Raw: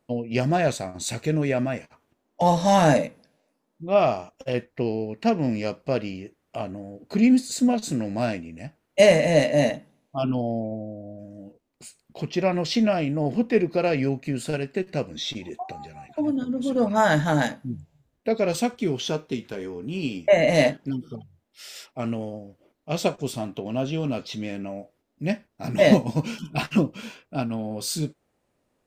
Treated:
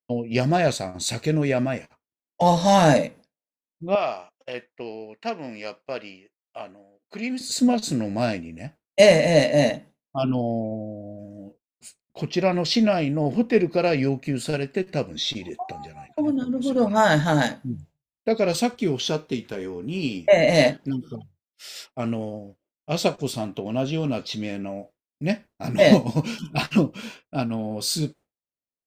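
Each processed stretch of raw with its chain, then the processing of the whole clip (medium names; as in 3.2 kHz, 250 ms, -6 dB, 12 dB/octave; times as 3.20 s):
3.95–7.41 s: high-pass 1.2 kHz 6 dB/octave + treble shelf 5 kHz -10 dB
whole clip: expander -41 dBFS; dynamic bell 4.3 kHz, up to +5 dB, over -48 dBFS, Q 2.7; trim +1.5 dB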